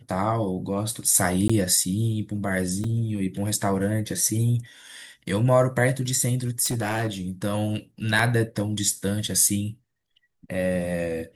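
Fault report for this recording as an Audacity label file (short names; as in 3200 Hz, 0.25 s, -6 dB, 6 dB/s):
1.480000	1.500000	gap 15 ms
2.840000	2.840000	gap 3.2 ms
6.640000	7.080000	clipped -21.5 dBFS
8.190000	8.190000	gap 2.8 ms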